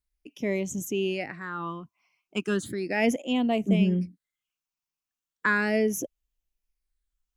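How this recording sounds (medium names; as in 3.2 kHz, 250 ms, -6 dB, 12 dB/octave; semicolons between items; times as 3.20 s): phasing stages 8, 0.36 Hz, lowest notch 510–1500 Hz; Nellymoser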